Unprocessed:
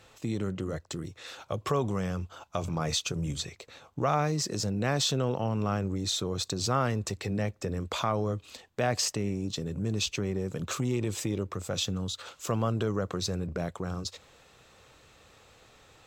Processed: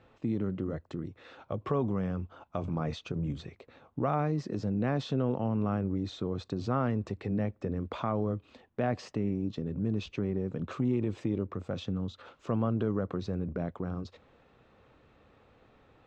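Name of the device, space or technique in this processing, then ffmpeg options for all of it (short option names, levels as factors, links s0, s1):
phone in a pocket: -af "lowpass=3200,equalizer=f=250:t=o:w=0.82:g=6,highshelf=f=2100:g=-9.5,volume=0.75"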